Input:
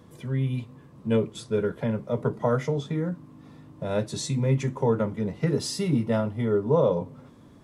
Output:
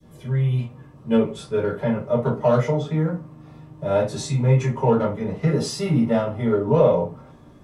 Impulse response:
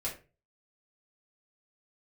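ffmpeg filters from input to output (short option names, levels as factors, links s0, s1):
-filter_complex "[0:a]adynamicequalizer=threshold=0.00891:dfrequency=1100:dqfactor=0.74:tfrequency=1100:tqfactor=0.74:attack=5:release=100:ratio=0.375:range=3.5:mode=boostabove:tftype=bell,acrossover=split=150|810|2500[s0][s1][s2][s3];[s2]asoftclip=type=tanh:threshold=0.0473[s4];[s0][s1][s4][s3]amix=inputs=4:normalize=0[s5];[1:a]atrim=start_sample=2205,asetrate=52920,aresample=44100[s6];[s5][s6]afir=irnorm=-1:irlink=0,volume=1.12"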